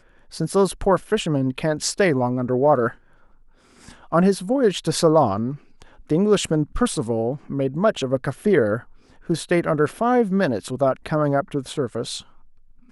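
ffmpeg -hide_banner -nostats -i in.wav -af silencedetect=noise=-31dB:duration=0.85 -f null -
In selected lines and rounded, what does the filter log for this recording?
silence_start: 2.91
silence_end: 3.89 | silence_duration: 0.98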